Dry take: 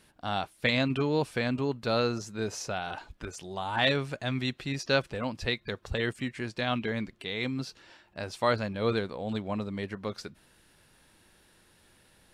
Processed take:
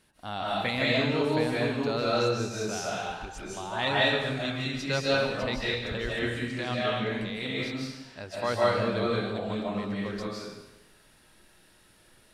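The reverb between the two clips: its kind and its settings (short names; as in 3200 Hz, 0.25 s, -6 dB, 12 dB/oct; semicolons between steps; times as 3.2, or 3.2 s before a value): digital reverb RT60 1 s, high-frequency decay 1×, pre-delay 0.115 s, DRR -6 dB; gain -4.5 dB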